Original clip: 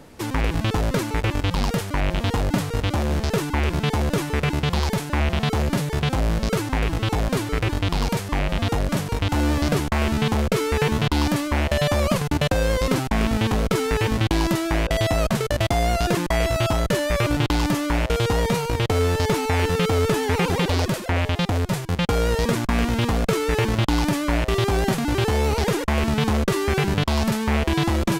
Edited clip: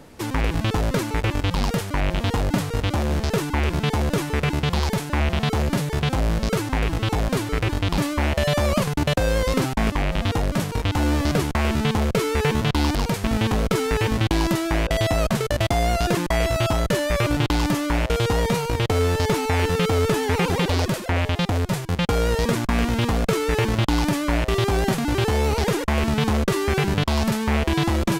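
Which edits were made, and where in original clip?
7.98–8.27 s: swap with 11.32–13.24 s

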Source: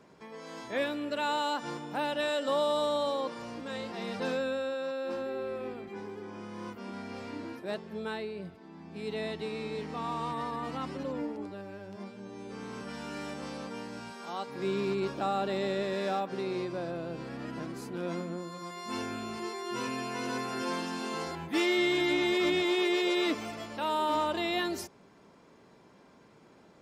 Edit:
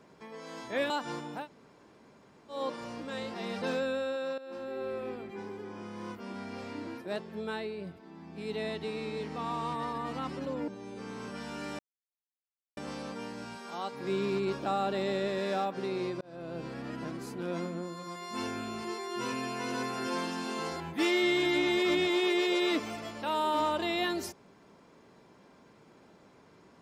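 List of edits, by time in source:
0.90–1.48 s: delete
1.98–3.14 s: room tone, crossfade 0.16 s
4.96–5.46 s: fade in, from -14 dB
11.26–12.21 s: delete
13.32 s: insert silence 0.98 s
16.76–17.14 s: fade in

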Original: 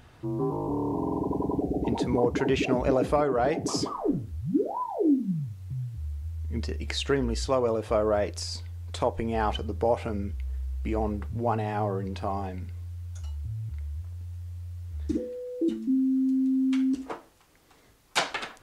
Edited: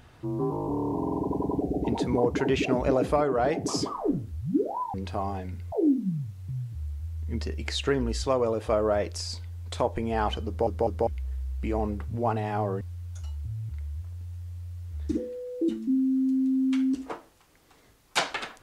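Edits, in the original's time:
9.69 s: stutter in place 0.20 s, 3 plays
12.03–12.81 s: move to 4.94 s

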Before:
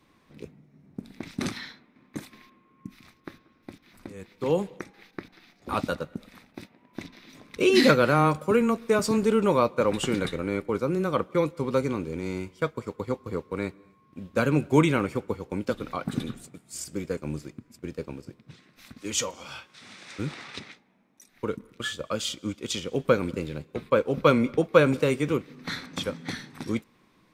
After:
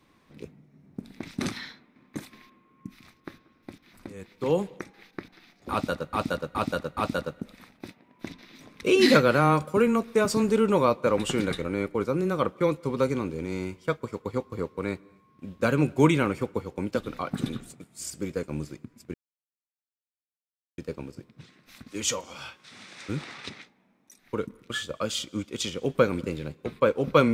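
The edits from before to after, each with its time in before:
5.71–6.13 s: loop, 4 plays
17.88 s: insert silence 1.64 s

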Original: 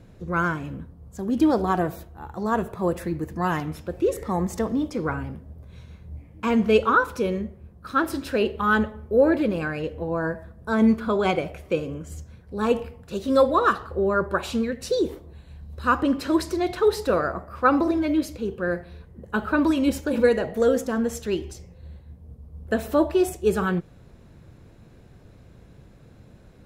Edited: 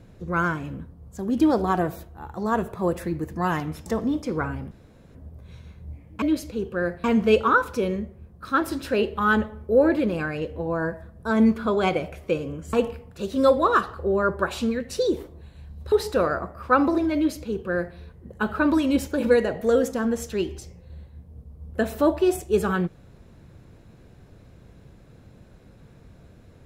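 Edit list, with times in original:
3.86–4.54 s: delete
5.39 s: insert room tone 0.44 s
12.15–12.65 s: delete
15.84–16.85 s: delete
18.08–18.90 s: copy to 6.46 s

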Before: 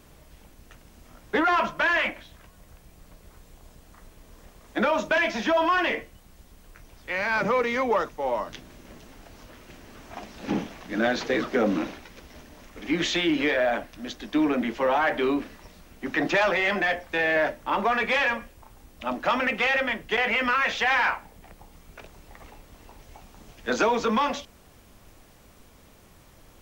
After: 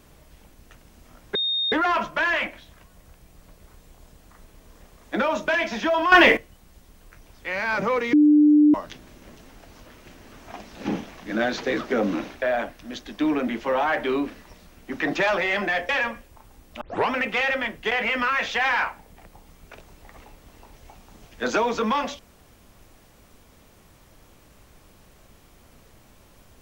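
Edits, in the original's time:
1.35 s: add tone 3.69 kHz -21.5 dBFS 0.37 s
5.75–6.00 s: gain +11.5 dB
7.76–8.37 s: bleep 298 Hz -11.5 dBFS
12.05–13.56 s: delete
17.03–18.15 s: delete
19.07 s: tape start 0.29 s

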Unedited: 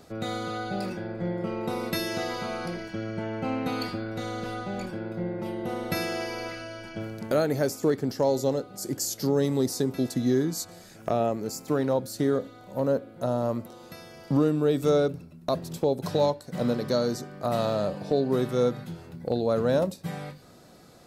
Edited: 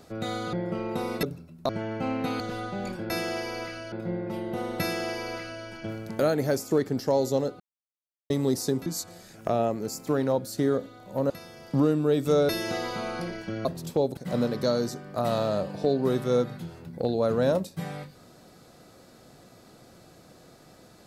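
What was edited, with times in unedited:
0.53–1.25 s: delete
1.95–3.11 s: swap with 15.06–15.52 s
3.82–4.34 s: delete
5.94–6.76 s: copy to 5.04 s
8.72–9.42 s: mute
9.98–10.47 s: delete
12.91–13.87 s: delete
16.04–16.44 s: delete

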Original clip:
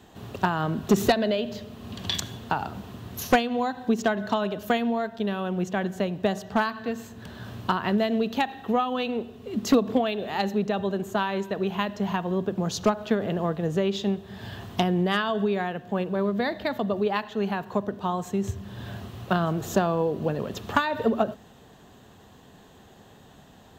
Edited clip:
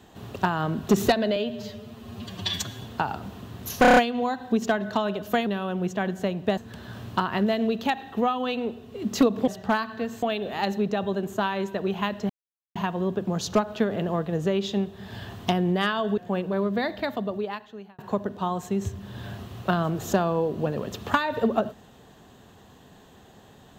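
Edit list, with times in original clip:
1.36–2.33 s: stretch 1.5×
3.33 s: stutter 0.03 s, 6 plays
4.83–5.23 s: delete
6.34–7.09 s: move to 9.99 s
12.06 s: insert silence 0.46 s
15.48–15.80 s: delete
16.61–17.61 s: fade out

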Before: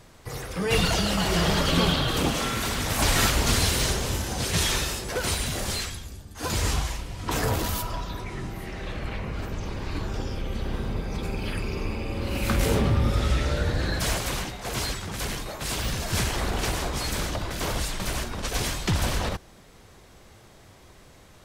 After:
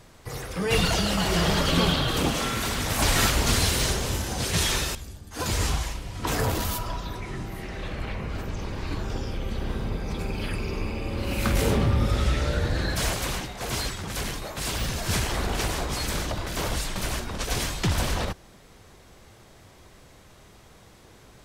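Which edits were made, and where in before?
4.95–5.99 s: delete

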